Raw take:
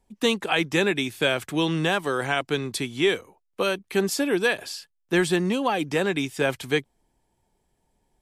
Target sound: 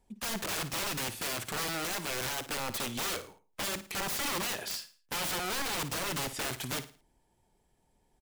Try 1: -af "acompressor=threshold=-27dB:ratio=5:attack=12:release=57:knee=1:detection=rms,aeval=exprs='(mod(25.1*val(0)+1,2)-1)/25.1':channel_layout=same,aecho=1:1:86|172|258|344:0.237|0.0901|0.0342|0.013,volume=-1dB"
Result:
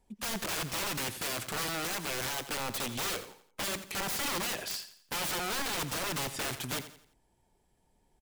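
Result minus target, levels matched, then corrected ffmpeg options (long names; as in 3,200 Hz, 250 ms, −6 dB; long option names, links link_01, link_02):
echo 31 ms late
-af "acompressor=threshold=-27dB:ratio=5:attack=12:release=57:knee=1:detection=rms,aeval=exprs='(mod(25.1*val(0)+1,2)-1)/25.1':channel_layout=same,aecho=1:1:55|110|165|220:0.237|0.0901|0.0342|0.013,volume=-1dB"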